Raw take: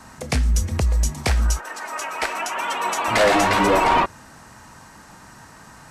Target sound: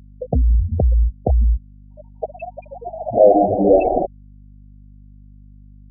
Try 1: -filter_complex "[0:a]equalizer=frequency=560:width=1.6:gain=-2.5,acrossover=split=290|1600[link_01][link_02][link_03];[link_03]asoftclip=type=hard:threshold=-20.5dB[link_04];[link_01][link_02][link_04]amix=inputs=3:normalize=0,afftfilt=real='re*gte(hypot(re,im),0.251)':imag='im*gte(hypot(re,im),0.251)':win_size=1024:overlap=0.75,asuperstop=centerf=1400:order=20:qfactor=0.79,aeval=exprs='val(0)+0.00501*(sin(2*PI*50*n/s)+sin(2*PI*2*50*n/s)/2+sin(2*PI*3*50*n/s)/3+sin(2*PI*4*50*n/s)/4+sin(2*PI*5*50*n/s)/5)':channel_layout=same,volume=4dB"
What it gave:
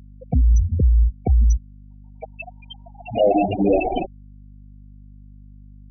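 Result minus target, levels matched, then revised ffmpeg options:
hard clipping: distortion −9 dB; 500 Hz band −4.0 dB
-filter_complex "[0:a]equalizer=frequency=560:width=1.6:gain=4.5,acrossover=split=290|1600[link_01][link_02][link_03];[link_03]asoftclip=type=hard:threshold=-29dB[link_04];[link_01][link_02][link_04]amix=inputs=3:normalize=0,afftfilt=real='re*gte(hypot(re,im),0.251)':imag='im*gte(hypot(re,im),0.251)':win_size=1024:overlap=0.75,asuperstop=centerf=1400:order=20:qfactor=0.79,aeval=exprs='val(0)+0.00501*(sin(2*PI*50*n/s)+sin(2*PI*2*50*n/s)/2+sin(2*PI*3*50*n/s)/3+sin(2*PI*4*50*n/s)/4+sin(2*PI*5*50*n/s)/5)':channel_layout=same,volume=4dB"

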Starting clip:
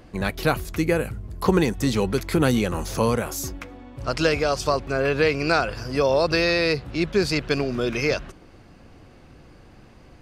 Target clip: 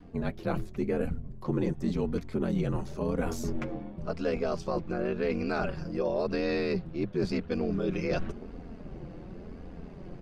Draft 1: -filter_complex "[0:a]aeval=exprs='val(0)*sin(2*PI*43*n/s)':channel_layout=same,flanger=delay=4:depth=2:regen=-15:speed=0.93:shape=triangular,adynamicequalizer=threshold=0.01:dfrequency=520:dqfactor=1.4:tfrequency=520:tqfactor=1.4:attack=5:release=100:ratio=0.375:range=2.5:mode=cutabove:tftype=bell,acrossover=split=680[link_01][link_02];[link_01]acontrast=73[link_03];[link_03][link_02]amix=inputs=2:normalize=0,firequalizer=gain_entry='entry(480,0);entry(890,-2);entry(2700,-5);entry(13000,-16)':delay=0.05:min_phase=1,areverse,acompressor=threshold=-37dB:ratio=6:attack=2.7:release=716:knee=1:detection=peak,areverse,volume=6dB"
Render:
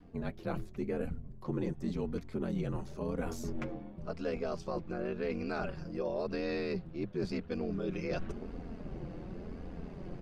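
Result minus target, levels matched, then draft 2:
downward compressor: peak gain reduction +6 dB
-filter_complex "[0:a]aeval=exprs='val(0)*sin(2*PI*43*n/s)':channel_layout=same,flanger=delay=4:depth=2:regen=-15:speed=0.93:shape=triangular,adynamicequalizer=threshold=0.01:dfrequency=520:dqfactor=1.4:tfrequency=520:tqfactor=1.4:attack=5:release=100:ratio=0.375:range=2.5:mode=cutabove:tftype=bell,acrossover=split=680[link_01][link_02];[link_01]acontrast=73[link_03];[link_03][link_02]amix=inputs=2:normalize=0,firequalizer=gain_entry='entry(480,0);entry(890,-2);entry(2700,-5);entry(13000,-16)':delay=0.05:min_phase=1,areverse,acompressor=threshold=-30dB:ratio=6:attack=2.7:release=716:knee=1:detection=peak,areverse,volume=6dB"

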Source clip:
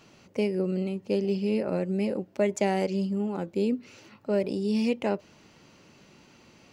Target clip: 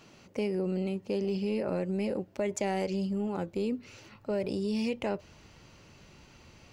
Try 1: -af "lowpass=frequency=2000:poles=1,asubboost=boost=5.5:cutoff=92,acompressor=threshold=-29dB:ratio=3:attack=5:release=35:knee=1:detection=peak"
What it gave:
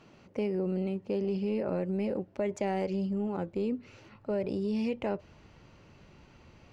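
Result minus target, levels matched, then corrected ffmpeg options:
2,000 Hz band −3.0 dB
-af "asubboost=boost=5.5:cutoff=92,acompressor=threshold=-29dB:ratio=3:attack=5:release=35:knee=1:detection=peak"

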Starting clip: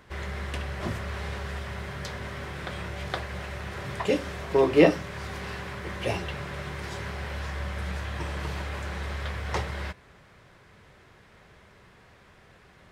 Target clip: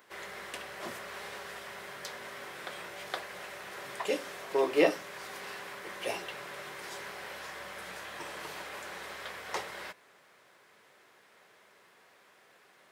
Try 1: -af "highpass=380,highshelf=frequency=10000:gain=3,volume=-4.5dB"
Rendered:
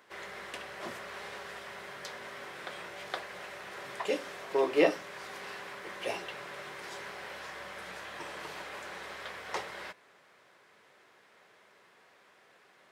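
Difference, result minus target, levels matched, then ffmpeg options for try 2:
8,000 Hz band −3.5 dB
-af "highpass=380,highshelf=frequency=10000:gain=14,volume=-4.5dB"

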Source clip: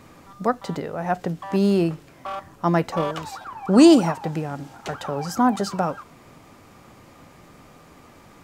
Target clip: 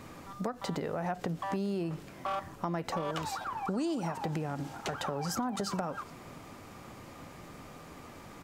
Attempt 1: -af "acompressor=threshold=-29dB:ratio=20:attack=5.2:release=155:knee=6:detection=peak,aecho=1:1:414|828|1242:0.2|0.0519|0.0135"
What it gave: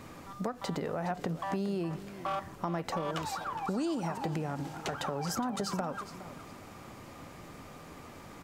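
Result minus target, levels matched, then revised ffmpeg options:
echo-to-direct +11 dB
-af "acompressor=threshold=-29dB:ratio=20:attack=5.2:release=155:knee=6:detection=peak,aecho=1:1:414|828:0.0562|0.0146"

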